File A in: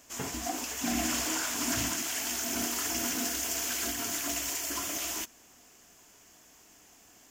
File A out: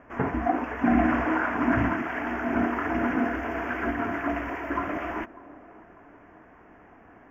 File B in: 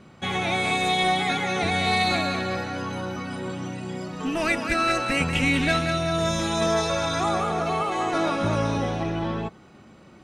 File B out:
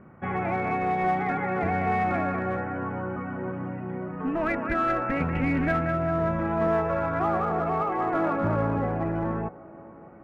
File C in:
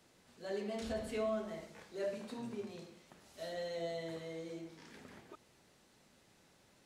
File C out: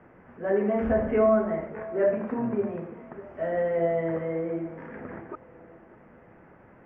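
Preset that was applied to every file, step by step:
inverse Chebyshev low-pass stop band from 3.7 kHz, stop band 40 dB; in parallel at -6.5 dB: hard clipper -21 dBFS; on the sum: feedback echo behind a band-pass 596 ms, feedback 43%, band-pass 500 Hz, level -17.5 dB; normalise loudness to -27 LUFS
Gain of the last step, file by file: +8.0 dB, -4.0 dB, +12.0 dB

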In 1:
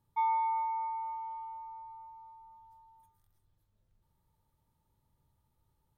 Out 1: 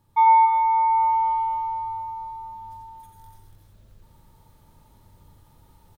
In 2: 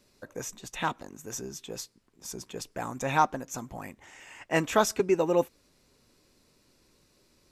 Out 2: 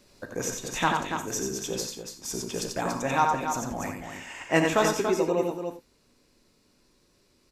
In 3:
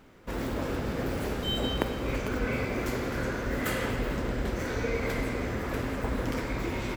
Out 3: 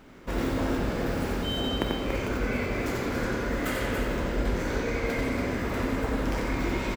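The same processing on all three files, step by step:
peaking EQ 14 kHz -3 dB 0.87 oct; gain riding within 4 dB 0.5 s; on a send: loudspeakers at several distances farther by 31 m -5 dB, 98 m -7 dB; on the sum: gated-style reverb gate 110 ms flat, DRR 7.5 dB; peak normalisation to -9 dBFS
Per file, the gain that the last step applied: +15.5 dB, +1.5 dB, -0.5 dB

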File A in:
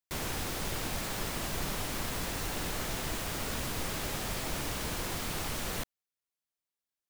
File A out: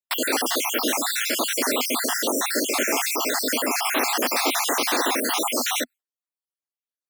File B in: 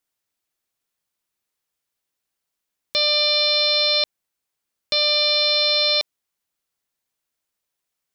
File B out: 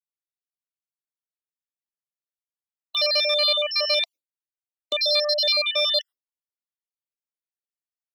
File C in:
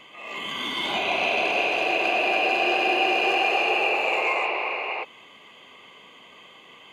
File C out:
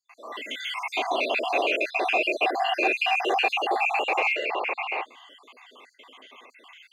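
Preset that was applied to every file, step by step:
random holes in the spectrogram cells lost 58%; gate with hold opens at -47 dBFS; Chebyshev shaper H 5 -34 dB, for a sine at -10 dBFS; elliptic high-pass 250 Hz, stop band 40 dB; peak normalisation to -9 dBFS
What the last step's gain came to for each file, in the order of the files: +17.5 dB, +1.0 dB, +1.5 dB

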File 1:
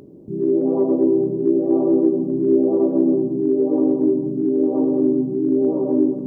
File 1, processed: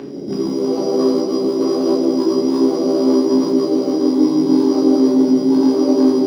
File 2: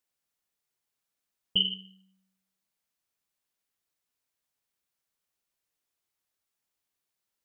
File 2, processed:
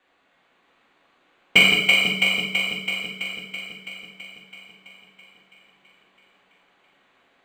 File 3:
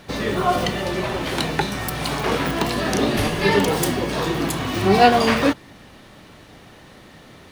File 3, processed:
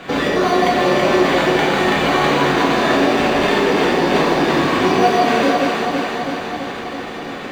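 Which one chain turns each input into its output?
compression 10:1, threshold -27 dBFS; echo whose repeats swap between lows and highs 165 ms, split 870 Hz, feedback 82%, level -2 dB; sample-rate reducer 5.3 kHz, jitter 0%; saturation -20.5 dBFS; three-band isolator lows -14 dB, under 180 Hz, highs -20 dB, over 5.1 kHz; gated-style reverb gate 230 ms falling, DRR -2 dB; peak normalisation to -2 dBFS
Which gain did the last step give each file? +11.5 dB, +17.0 dB, +11.0 dB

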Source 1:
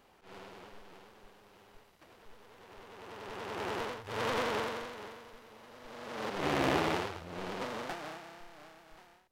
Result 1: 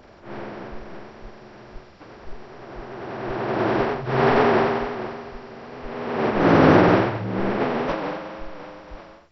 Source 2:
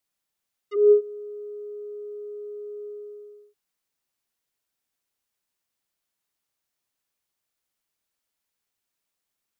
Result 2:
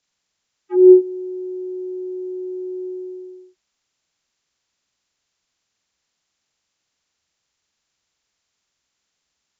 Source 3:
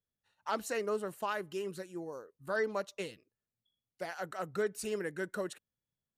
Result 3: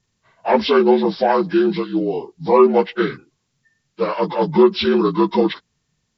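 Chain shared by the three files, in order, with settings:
frequency axis rescaled in octaves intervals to 76%; bass shelf 190 Hz +10 dB; peak normalisation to -1.5 dBFS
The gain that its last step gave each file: +15.5 dB, +6.0 dB, +20.0 dB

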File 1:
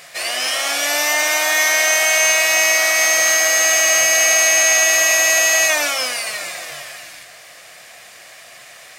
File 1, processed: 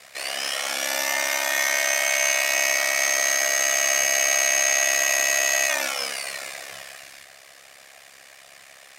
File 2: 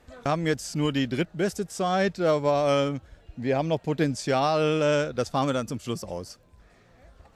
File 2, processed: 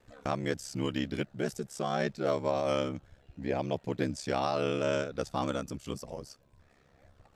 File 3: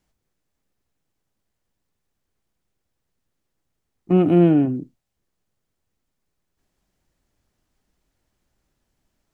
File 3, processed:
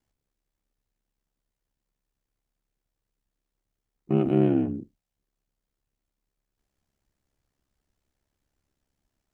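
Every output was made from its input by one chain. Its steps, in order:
ring modulator 34 Hz; trim -4 dB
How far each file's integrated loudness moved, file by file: -7.0 LU, -7.0 LU, -7.0 LU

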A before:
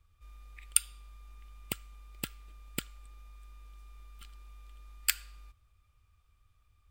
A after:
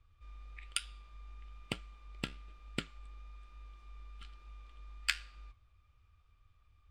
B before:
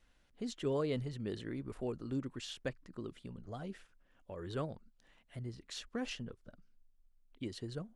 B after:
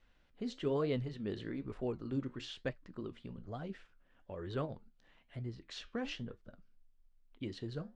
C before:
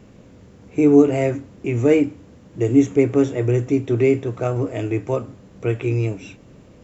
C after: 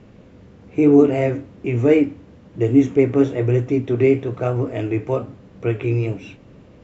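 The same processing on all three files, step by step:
low-pass 4.4 kHz 12 dB/octave; flange 1.1 Hz, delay 7.1 ms, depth 8.4 ms, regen -71%; trim +5 dB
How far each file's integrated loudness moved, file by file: -8.5 LU, +0.5 LU, +0.5 LU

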